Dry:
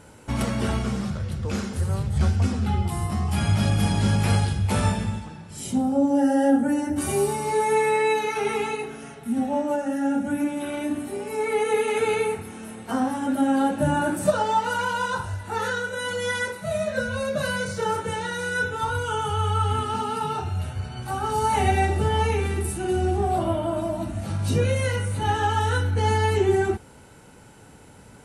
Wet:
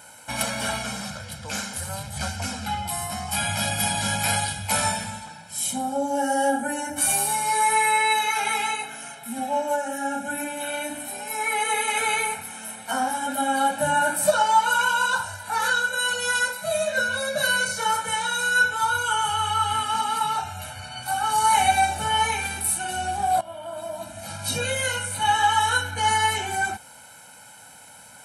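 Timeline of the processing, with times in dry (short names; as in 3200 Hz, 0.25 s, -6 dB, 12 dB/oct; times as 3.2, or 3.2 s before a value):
23.41–24.55 fade in, from -17 dB
whole clip: HPF 1000 Hz 6 dB/oct; high shelf 8900 Hz +10 dB; comb 1.3 ms, depth 83%; gain +3.5 dB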